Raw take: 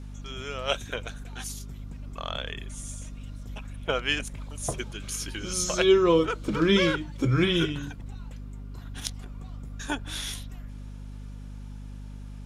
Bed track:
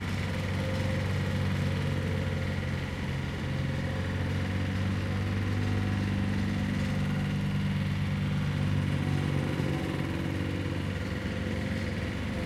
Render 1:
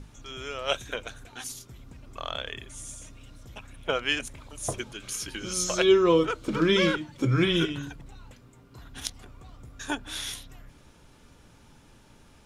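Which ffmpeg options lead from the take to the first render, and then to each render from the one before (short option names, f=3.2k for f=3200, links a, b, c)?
-af "bandreject=f=50:t=h:w=6,bandreject=f=100:t=h:w=6,bandreject=f=150:t=h:w=6,bandreject=f=200:t=h:w=6,bandreject=f=250:t=h:w=6"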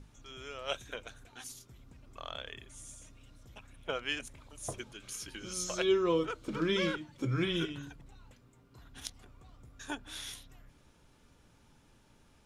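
-af "volume=-8.5dB"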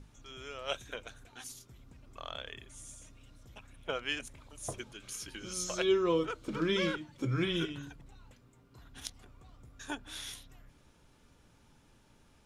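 -af anull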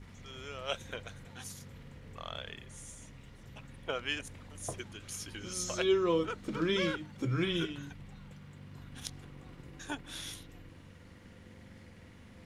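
-filter_complex "[1:a]volume=-22dB[a];[0:a][a]amix=inputs=2:normalize=0"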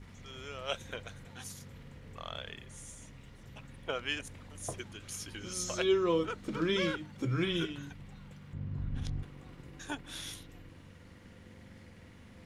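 -filter_complex "[0:a]asettb=1/sr,asplit=3[a][b][c];[a]atrim=end=8.534[d];[b]atrim=start=8.53:end=9.23,asetpts=PTS-STARTPTS,afade=t=in:d=0.004:c=qsin,afade=t=out:st=0.696:d=0.004:c=qsin,aemphasis=mode=reproduction:type=riaa[e];[c]atrim=start=9.226[f];[d][e]acrossfade=d=0.004:c1=hsin:c2=qsin[g];[g][f]acrossfade=d=0.004:c1=qsin:c2=hsin"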